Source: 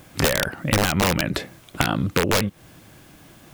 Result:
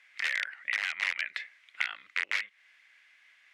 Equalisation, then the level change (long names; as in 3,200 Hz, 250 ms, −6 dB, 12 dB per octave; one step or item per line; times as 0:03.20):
four-pole ladder band-pass 2,200 Hz, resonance 70%
+1.5 dB